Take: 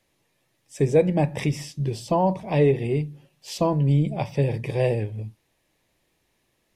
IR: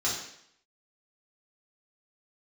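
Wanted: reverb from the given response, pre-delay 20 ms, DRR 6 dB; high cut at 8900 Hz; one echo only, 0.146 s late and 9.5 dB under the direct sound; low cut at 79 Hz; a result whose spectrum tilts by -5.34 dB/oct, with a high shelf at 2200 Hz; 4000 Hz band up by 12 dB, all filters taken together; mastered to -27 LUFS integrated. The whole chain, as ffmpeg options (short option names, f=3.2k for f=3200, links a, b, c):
-filter_complex "[0:a]highpass=79,lowpass=8.9k,highshelf=f=2.2k:g=8.5,equalizer=f=4k:t=o:g=7.5,aecho=1:1:146:0.335,asplit=2[a][b];[1:a]atrim=start_sample=2205,adelay=20[c];[b][c]afir=irnorm=-1:irlink=0,volume=-14.5dB[d];[a][d]amix=inputs=2:normalize=0,volume=-5.5dB"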